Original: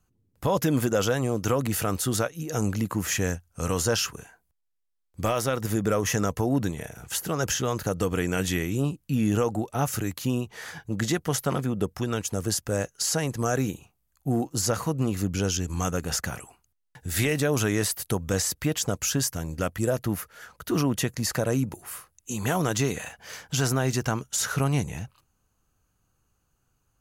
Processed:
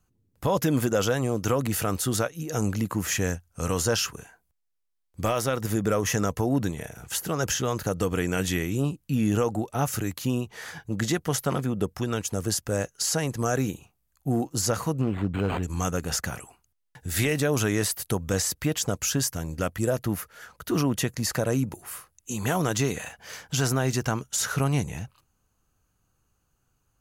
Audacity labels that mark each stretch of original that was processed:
15.010000	15.630000	linearly interpolated sample-rate reduction rate divided by 8×

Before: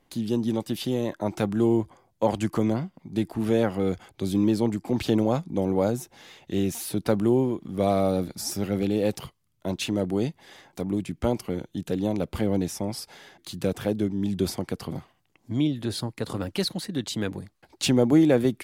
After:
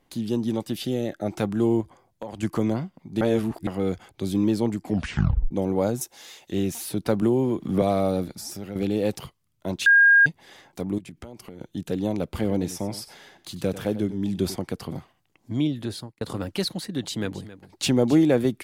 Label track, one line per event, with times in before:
0.740000	1.300000	Butterworth band-reject 1,000 Hz, Q 2.7
1.810000	2.430000	downward compressor 5 to 1, threshold −32 dBFS
3.210000	3.670000	reverse
4.830000	4.830000	tape stop 0.68 s
6.010000	6.510000	bass and treble bass −12 dB, treble +11 dB
7.220000	7.820000	multiband upward and downward compressor depth 100%
8.330000	8.760000	downward compressor 2 to 1, threshold −36 dBFS
9.860000	10.260000	beep over 1,620 Hz −11.5 dBFS
10.980000	11.610000	downward compressor 12 to 1, threshold −36 dBFS
12.280000	14.560000	single-tap delay 95 ms −14.5 dB
15.810000	16.210000	fade out
16.740000	18.160000	single-tap delay 269 ms −15.5 dB

